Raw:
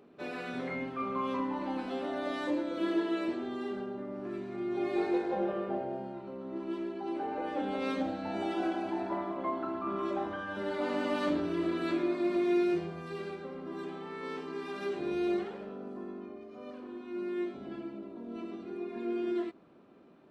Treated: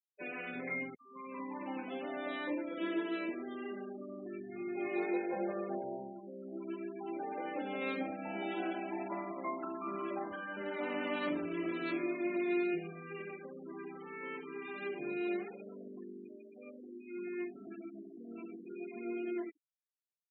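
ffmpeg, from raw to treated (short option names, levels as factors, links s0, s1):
-filter_complex "[0:a]asettb=1/sr,asplit=3[s0][s1][s2];[s0]atrim=end=4.784[s3];[s1]atrim=start=4.78:end=9.31,asetpts=PTS-STARTPTS,afade=t=in:d=0.004:c=qsin,afade=t=out:st=4.526:d=0.004:c=qsin,aecho=1:1:66|132|198|264|330:0.178|0.0996|0.0558|0.0312|0.0175,atrim=end_sample=199773[s4];[s2]atrim=start=9.306[s5];[s3][s4]acrossfade=d=0.004:c1=hsin:c2=qsin[s6];[s6][s5]acrossfade=d=0.004:c1=qsin:c2=hsin,asettb=1/sr,asplit=3[s7][s8][s9];[s7]atrim=end=15.764[s10];[s8]atrim=start=15.76:end=16.82,asetpts=PTS-STARTPTS,afade=t=in:d=0.004:c=qsin,afade=t=out:st=1.056:d=0.004:c=qsin,asuperstop=centerf=860:order=4:qfactor=4.1[s11];[s9]atrim=start=16.816[s12];[s10][s11]acrossfade=d=0.004:c1=hsin:c2=qsin[s13];[s13][s12]acrossfade=d=0.004:c1=qsin:c2=hsin,asplit=2[s14][s15];[s14]atrim=end=0.95,asetpts=PTS-STARTPTS,afade=t=out:st=0.946:d=0.004:c=hsin[s16];[s15]atrim=start=0.95,asetpts=PTS-STARTPTS,afade=t=in:d=0.77[s17];[s16][s17]concat=n=2:v=0:a=1,highpass=110,equalizer=f=2300:t=o:w=0.76:g=9.5,afftfilt=real='re*gte(hypot(re,im),0.0158)':imag='im*gte(hypot(re,im),0.0158)':win_size=1024:overlap=0.75,volume=0.531"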